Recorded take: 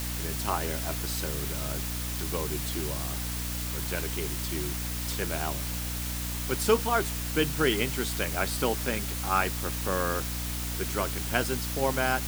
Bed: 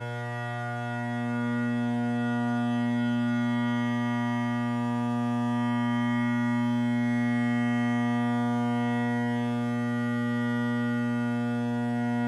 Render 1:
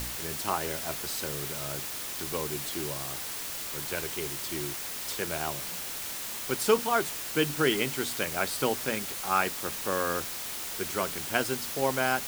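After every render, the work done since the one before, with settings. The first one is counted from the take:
hum removal 60 Hz, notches 5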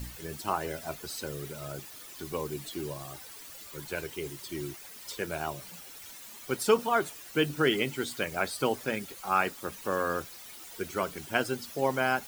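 broadband denoise 13 dB, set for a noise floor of −37 dBFS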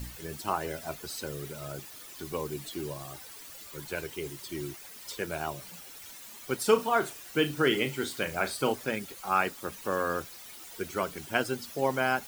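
0:06.63–0:08.73: flutter between parallel walls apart 6.2 metres, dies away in 0.21 s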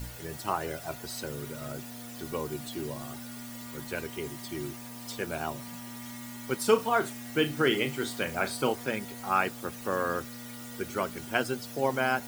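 mix in bed −17.5 dB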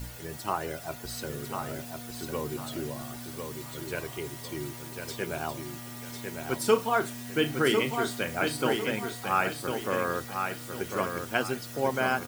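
repeating echo 1,050 ms, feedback 33%, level −5.5 dB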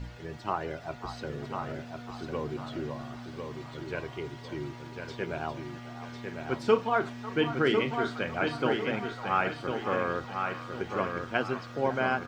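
high-frequency loss of the air 190 metres
echo through a band-pass that steps 548 ms, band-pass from 970 Hz, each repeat 0.7 octaves, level −9 dB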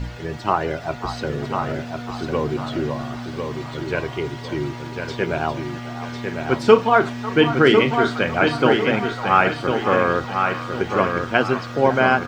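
level +11.5 dB
brickwall limiter −1 dBFS, peak gain reduction 1 dB

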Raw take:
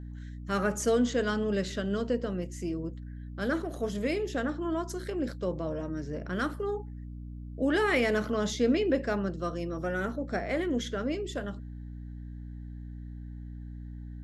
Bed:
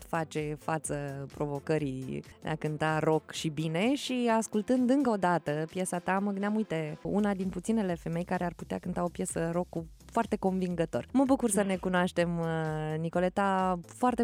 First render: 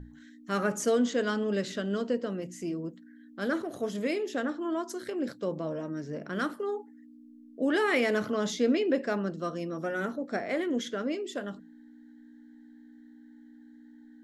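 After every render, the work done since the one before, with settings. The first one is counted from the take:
mains-hum notches 60/120/180 Hz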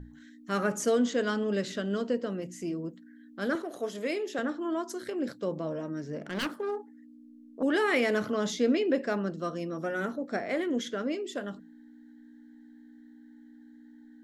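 0:03.55–0:04.39: high-pass filter 300 Hz
0:06.20–0:07.63: phase distortion by the signal itself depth 0.4 ms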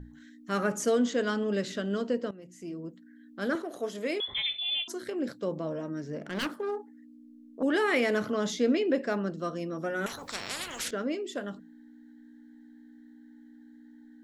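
0:02.31–0:03.59: fade in equal-power, from −16 dB
0:04.20–0:04.88: voice inversion scrambler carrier 3,800 Hz
0:10.06–0:10.91: every bin compressed towards the loudest bin 10 to 1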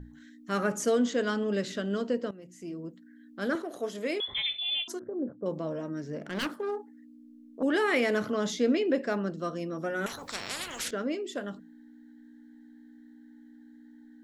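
0:04.99–0:05.46: Gaussian smoothing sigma 9.2 samples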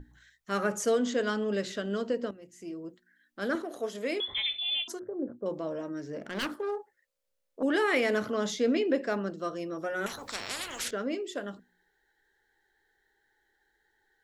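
parametric band 160 Hz −8 dB 0.38 octaves
mains-hum notches 60/120/180/240/300/360 Hz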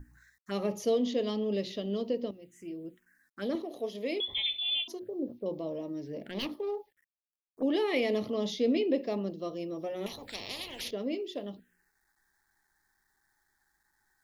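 bit reduction 12 bits
phaser swept by the level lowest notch 480 Hz, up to 1,500 Hz, full sweep at −34 dBFS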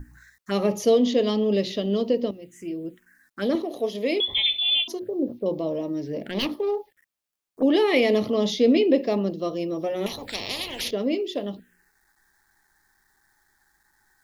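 level +9 dB

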